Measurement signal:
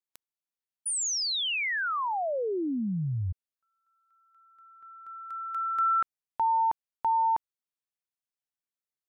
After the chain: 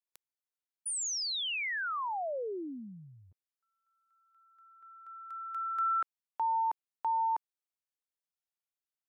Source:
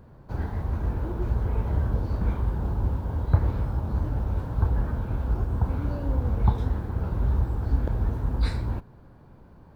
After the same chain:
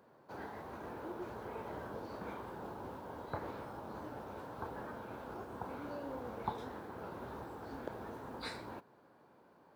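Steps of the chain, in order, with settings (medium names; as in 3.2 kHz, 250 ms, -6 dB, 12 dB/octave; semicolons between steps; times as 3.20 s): high-pass 370 Hz 12 dB/octave; trim -5 dB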